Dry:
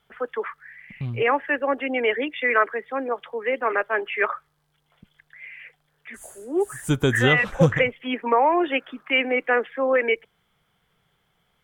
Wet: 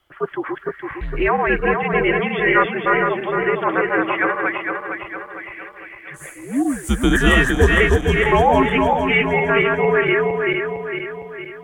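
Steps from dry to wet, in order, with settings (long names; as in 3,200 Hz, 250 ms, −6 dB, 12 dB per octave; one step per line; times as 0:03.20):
feedback delay that plays each chunk backwards 229 ms, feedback 70%, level −2 dB
frequency shifter −85 Hz
level +2.5 dB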